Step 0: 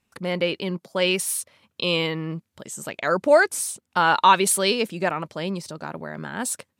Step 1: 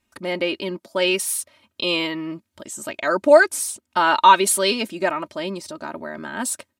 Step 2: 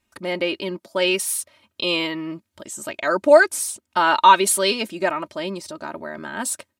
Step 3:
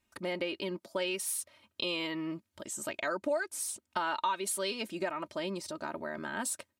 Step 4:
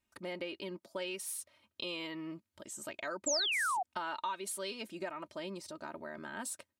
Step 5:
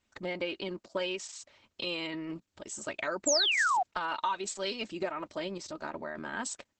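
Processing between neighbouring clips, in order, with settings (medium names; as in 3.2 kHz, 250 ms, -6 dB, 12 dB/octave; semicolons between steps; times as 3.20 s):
comb 3.2 ms, depth 70%
peaking EQ 250 Hz -4 dB 0.23 oct
compression 4:1, threshold -26 dBFS, peak gain reduction 16 dB; trim -5.5 dB
painted sound fall, 3.26–3.83 s, 690–7800 Hz -27 dBFS; trim -6 dB
trim +6.5 dB; Opus 10 kbps 48 kHz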